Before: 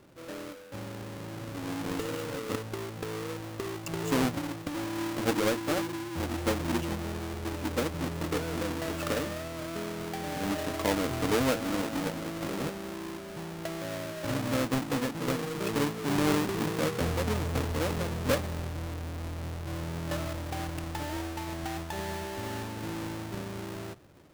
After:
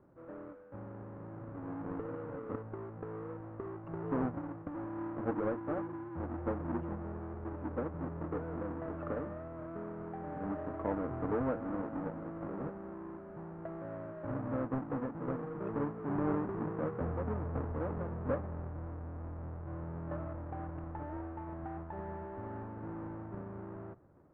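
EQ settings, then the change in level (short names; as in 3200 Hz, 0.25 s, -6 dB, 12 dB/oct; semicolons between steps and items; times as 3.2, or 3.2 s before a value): LPF 1400 Hz 24 dB/oct; air absorption 67 m; -6.0 dB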